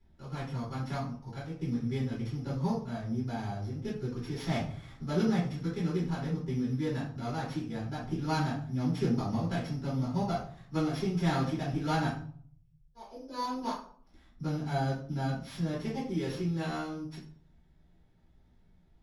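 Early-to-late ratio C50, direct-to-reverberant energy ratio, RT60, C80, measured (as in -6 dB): 5.0 dB, -9.5 dB, 0.50 s, 10.0 dB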